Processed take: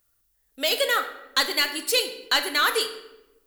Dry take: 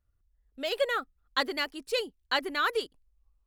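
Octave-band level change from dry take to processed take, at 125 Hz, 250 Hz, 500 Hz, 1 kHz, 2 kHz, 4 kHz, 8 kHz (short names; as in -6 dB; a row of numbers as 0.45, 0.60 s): n/a, +2.5 dB, +3.0 dB, +5.0 dB, +7.0 dB, +10.5 dB, +18.5 dB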